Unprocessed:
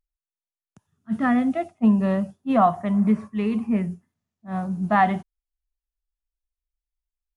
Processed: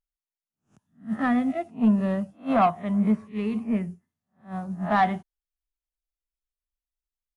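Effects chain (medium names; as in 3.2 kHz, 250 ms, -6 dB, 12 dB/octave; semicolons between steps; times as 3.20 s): reverse spectral sustain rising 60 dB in 0.31 s; saturation -12 dBFS, distortion -18 dB; upward expansion 1.5:1, over -32 dBFS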